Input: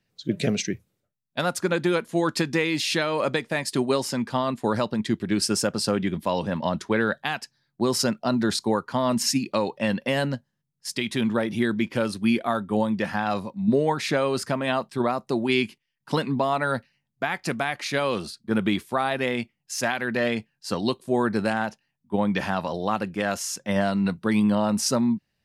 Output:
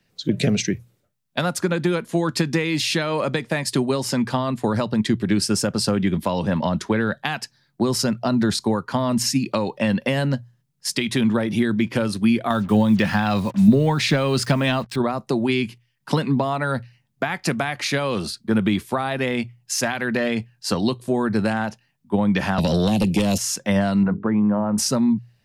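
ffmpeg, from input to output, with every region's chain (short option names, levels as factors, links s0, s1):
-filter_complex "[0:a]asettb=1/sr,asplit=3[s0][s1][s2];[s0]atrim=end=12.504[s3];[s1]atrim=start=12.5:end=14.96,asetpts=PTS-STARTPTS,afade=t=in:d=0.004:c=qsin,afade=t=out:st=2.456:d=0.004:c=qsin,equalizer=f=3400:w=0.71:g=6.5,acontrast=42,acrusher=bits=6:mix=0:aa=0.5[s4];[s2]atrim=start=14.956[s5];[s3][s4]acrossfade=d=0.004:c1=hsin:c2=qsin[s6];[s6][s5]acrossfade=d=0.004:c1=qsin:c2=hsin,asettb=1/sr,asplit=3[s7][s8][s9];[s7]atrim=end=22.584[s10];[s8]atrim=start=22.58:end=23.38,asetpts=PTS-STARTPTS,afade=t=in:d=0.004:c=qsin,afade=t=out:st=0.796:d=0.004:c=qsin,asuperstop=centerf=1300:order=4:qfactor=0.56,acrossover=split=280|820|6500[s11][s12][s13][s14];[s11]acompressor=threshold=0.00794:ratio=3[s15];[s12]acompressor=threshold=0.00562:ratio=3[s16];[s13]acompressor=threshold=0.00501:ratio=3[s17];[s14]acompressor=threshold=0.002:ratio=3[s18];[s15][s16][s17][s18]amix=inputs=4:normalize=0,aeval=exprs='0.141*sin(PI/2*4.47*val(0)/0.141)':c=same[s19];[s9]atrim=start=23.376[s20];[s10][s19]acrossfade=d=0.004:c1=hsin:c2=qsin[s21];[s21][s20]acrossfade=d=0.004:c1=qsin:c2=hsin,asettb=1/sr,asplit=3[s22][s23][s24];[s22]atrim=end=24.034[s25];[s23]atrim=start=24.03:end=24.78,asetpts=PTS-STARTPTS,afade=t=in:d=0.004:c=qsin,afade=t=out:st=0.746:d=0.004:c=qsin,lowpass=f=1600:w=0.5412,lowpass=f=1600:w=1.3066,bandreject=f=50:t=h:w=6,bandreject=f=100:t=h:w=6,bandreject=f=150:t=h:w=6,bandreject=f=200:t=h:w=6,bandreject=f=250:t=h:w=6,bandreject=f=300:t=h:w=6,bandreject=f=350:t=h:w=6,bandreject=f=400:t=h:w=6,bandreject=f=450:t=h:w=6,acompressor=threshold=0.0631:ratio=2:attack=3.2:release=140:knee=1:detection=peak[s26];[s24]atrim=start=24.776[s27];[s25][s26]acrossfade=d=0.004:c1=hsin:c2=qsin[s28];[s28][s27]acrossfade=d=0.004:c1=qsin:c2=hsin,bandreject=f=60:t=h:w=6,bandreject=f=120:t=h:w=6,acrossover=split=190[s29][s30];[s30]acompressor=threshold=0.0355:ratio=6[s31];[s29][s31]amix=inputs=2:normalize=0,volume=2.66"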